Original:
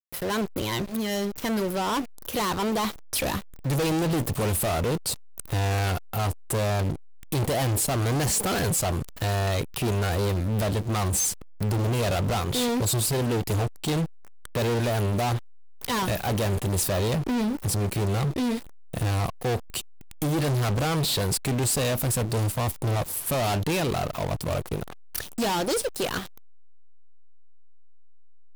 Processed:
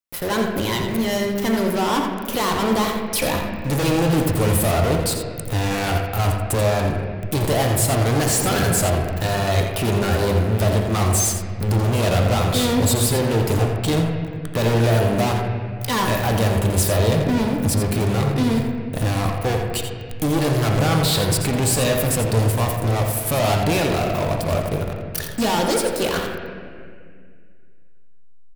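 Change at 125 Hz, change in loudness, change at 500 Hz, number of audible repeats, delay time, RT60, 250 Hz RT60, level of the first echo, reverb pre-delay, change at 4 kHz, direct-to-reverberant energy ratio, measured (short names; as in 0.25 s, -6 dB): +6.5 dB, +6.0 dB, +7.0 dB, 1, 85 ms, 2.0 s, 2.6 s, -8.0 dB, 3 ms, +5.5 dB, 0.5 dB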